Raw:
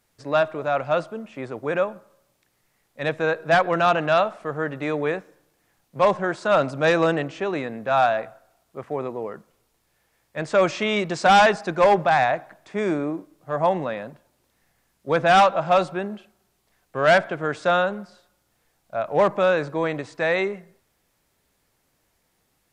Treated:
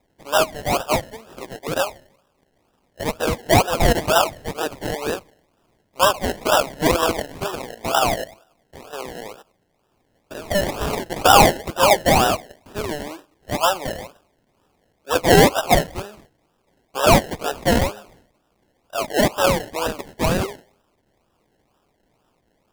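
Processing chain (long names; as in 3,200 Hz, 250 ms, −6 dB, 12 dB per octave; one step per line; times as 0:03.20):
0:07.55–0:11.03: spectrum averaged block by block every 100 ms
high-pass filter 740 Hz 12 dB per octave
sample-and-hold swept by an LFO 29×, swing 60% 2.1 Hz
level +5.5 dB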